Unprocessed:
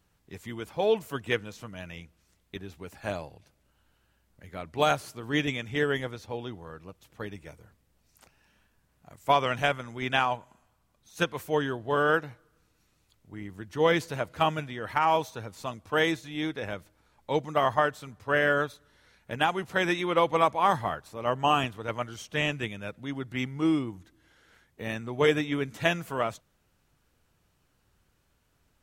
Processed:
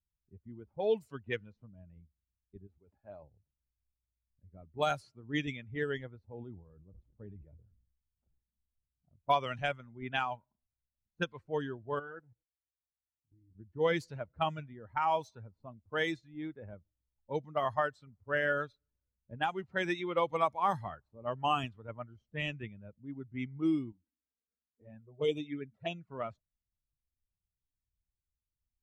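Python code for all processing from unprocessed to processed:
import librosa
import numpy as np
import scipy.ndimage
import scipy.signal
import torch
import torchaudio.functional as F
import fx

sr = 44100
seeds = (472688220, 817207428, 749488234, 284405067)

y = fx.chain(x, sr, fx.low_shelf(hz=360.0, db=-12.0),
    fx.sustainer(db_per_s=40.0), at=(2.67, 3.23))
y = fx.chain(y, sr, fx.high_shelf(hz=5700.0, db=5.0),
    fx.sustainer(db_per_s=51.0), at=(6.3, 9.35))
y = fx.chain(y, sr, fx.lowpass(hz=3200.0, slope=12),
    fx.level_steps(step_db=16),
    fx.notch_comb(f0_hz=200.0), at=(11.99, 13.55))
y = fx.chain(y, sr, fx.highpass(hz=160.0, slope=6),
    fx.env_flanger(rest_ms=4.6, full_db=-23.5), at=(23.92, 26.1))
y = fx.bin_expand(y, sr, power=1.5)
y = fx.env_lowpass(y, sr, base_hz=430.0, full_db=-24.0)
y = fx.high_shelf(y, sr, hz=6200.0, db=-7.0)
y = y * librosa.db_to_amplitude(-4.0)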